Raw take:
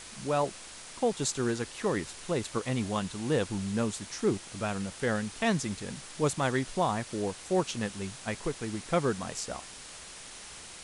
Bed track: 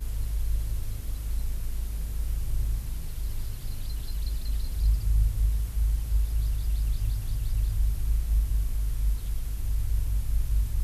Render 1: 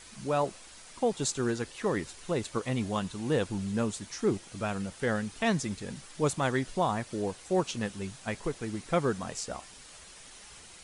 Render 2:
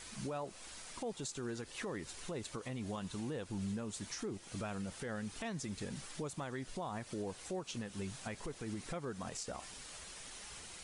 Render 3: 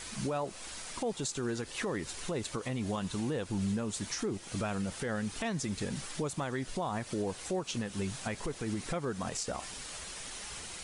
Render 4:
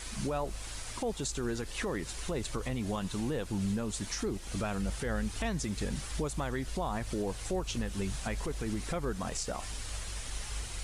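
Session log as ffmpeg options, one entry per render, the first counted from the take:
ffmpeg -i in.wav -af "afftdn=noise_reduction=7:noise_floor=-47" out.wav
ffmpeg -i in.wav -af "acompressor=threshold=-35dB:ratio=6,alimiter=level_in=8dB:limit=-24dB:level=0:latency=1:release=77,volume=-8dB" out.wav
ffmpeg -i in.wav -af "volume=7dB" out.wav
ffmpeg -i in.wav -i bed.wav -filter_complex "[1:a]volume=-14.5dB[link_01];[0:a][link_01]amix=inputs=2:normalize=0" out.wav

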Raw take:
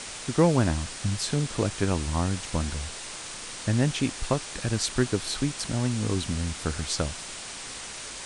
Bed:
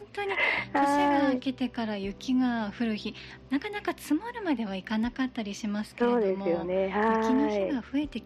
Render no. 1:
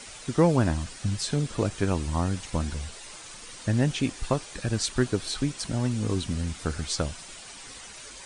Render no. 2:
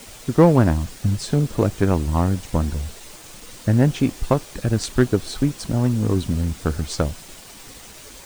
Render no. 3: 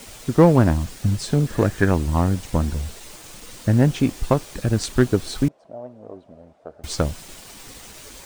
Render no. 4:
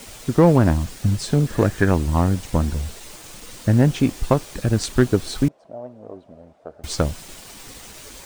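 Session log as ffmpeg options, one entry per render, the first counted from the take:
ffmpeg -i in.wav -af "afftdn=noise_reduction=9:noise_floor=-39" out.wav
ffmpeg -i in.wav -filter_complex "[0:a]asplit=2[link_01][link_02];[link_02]adynamicsmooth=sensitivity=2:basefreq=710,volume=3dB[link_03];[link_01][link_03]amix=inputs=2:normalize=0,acrusher=bits=6:mix=0:aa=0.000001" out.wav
ffmpeg -i in.wav -filter_complex "[0:a]asettb=1/sr,asplit=3[link_01][link_02][link_03];[link_01]atrim=end=1.474[link_04];[link_02]atrim=start=1.47:end=1.91,asetpts=PTS-STARTPTS,afade=type=in:duration=0.004:curve=qsin,afade=type=out:start_time=0.436:duration=0.004:curve=qsin,equalizer=frequency=1700:width=4.1:gain=12[link_05];[link_03]atrim=start=1.906[link_06];[link_04][link_05]acrossfade=duration=0.004:curve1=hsin:curve2=qsin[link_07];[link_07][link_06]acrossfade=duration=0.004:curve1=qsin:curve2=hsin,asettb=1/sr,asplit=3[link_08][link_09][link_10];[link_08]atrim=end=5.484[link_11];[link_09]atrim=start=5.48:end=6.84,asetpts=PTS-STARTPTS,afade=type=in:duration=0.004:curve=qsin,afade=type=out:start_time=1.356:duration=0.004:curve=qsin,bandpass=frequency=630:width_type=q:width=5.9[link_12];[link_10]atrim=start=6.836[link_13];[link_11][link_12]acrossfade=duration=0.004:curve1=hsin:curve2=qsin[link_14];[link_14][link_13]acrossfade=duration=0.004:curve1=qsin:curve2=hsin" out.wav
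ffmpeg -i in.wav -af "volume=1dB,alimiter=limit=-3dB:level=0:latency=1" out.wav

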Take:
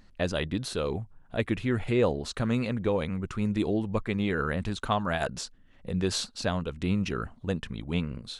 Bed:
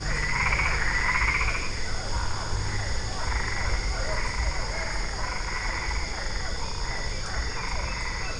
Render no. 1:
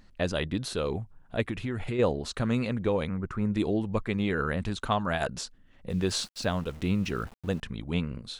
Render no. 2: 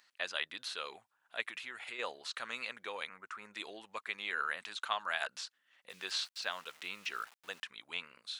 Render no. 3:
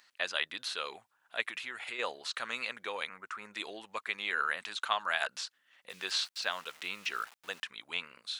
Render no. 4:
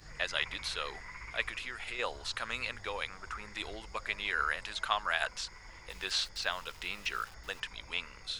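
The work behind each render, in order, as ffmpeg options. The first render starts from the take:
ffmpeg -i in.wav -filter_complex "[0:a]asplit=3[link_01][link_02][link_03];[link_01]afade=type=out:start_time=1.42:duration=0.02[link_04];[link_02]acompressor=threshold=-27dB:ratio=6:attack=3.2:release=140:knee=1:detection=peak,afade=type=in:start_time=1.42:duration=0.02,afade=type=out:start_time=1.98:duration=0.02[link_05];[link_03]afade=type=in:start_time=1.98:duration=0.02[link_06];[link_04][link_05][link_06]amix=inputs=3:normalize=0,asettb=1/sr,asplit=3[link_07][link_08][link_09];[link_07]atrim=end=3.094[link_10];[link_08]atrim=start=3.09:end=3.54,asetpts=PTS-STARTPTS,afade=type=in:duration=0.004:curve=qsin,afade=type=out:start_time=0.446:duration=0.004:curve=qsin,highshelf=frequency=2200:width_type=q:width=1.5:gain=-9.5[link_11];[link_09]atrim=start=3.536[link_12];[link_10][link_11]acrossfade=duration=0.004:curve1=hsin:curve2=qsin[link_13];[link_13][link_12]acrossfade=duration=0.004:curve1=qsin:curve2=hsin,asplit=3[link_14][link_15][link_16];[link_14]afade=type=out:start_time=5.89:duration=0.02[link_17];[link_15]aeval=exprs='val(0)*gte(abs(val(0)),0.00501)':channel_layout=same,afade=type=in:start_time=5.89:duration=0.02,afade=type=out:start_time=7.6:duration=0.02[link_18];[link_16]afade=type=in:start_time=7.6:duration=0.02[link_19];[link_17][link_18][link_19]amix=inputs=3:normalize=0" out.wav
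ffmpeg -i in.wav -filter_complex "[0:a]highpass=1400,acrossover=split=4600[link_01][link_02];[link_02]acompressor=threshold=-50dB:ratio=4:attack=1:release=60[link_03];[link_01][link_03]amix=inputs=2:normalize=0" out.wav
ffmpeg -i in.wav -af "volume=4dB" out.wav
ffmpeg -i in.wav -i bed.wav -filter_complex "[1:a]volume=-22.5dB[link_01];[0:a][link_01]amix=inputs=2:normalize=0" out.wav

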